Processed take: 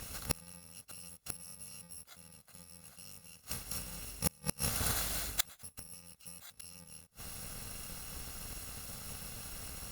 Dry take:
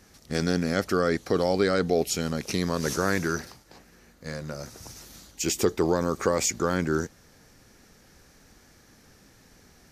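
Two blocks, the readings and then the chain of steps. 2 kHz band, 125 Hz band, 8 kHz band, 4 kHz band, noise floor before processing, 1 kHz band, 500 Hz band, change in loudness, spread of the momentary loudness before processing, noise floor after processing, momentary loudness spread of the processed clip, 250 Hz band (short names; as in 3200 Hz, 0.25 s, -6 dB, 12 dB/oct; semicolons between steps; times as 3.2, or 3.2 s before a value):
-14.5 dB, -13.0 dB, -6.5 dB, -7.5 dB, -57 dBFS, -17.0 dB, -26.5 dB, -13.0 dB, 16 LU, -65 dBFS, 17 LU, -21.0 dB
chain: FFT order left unsorted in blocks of 128 samples; flipped gate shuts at -22 dBFS, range -37 dB; gain +11.5 dB; Opus 64 kbps 48000 Hz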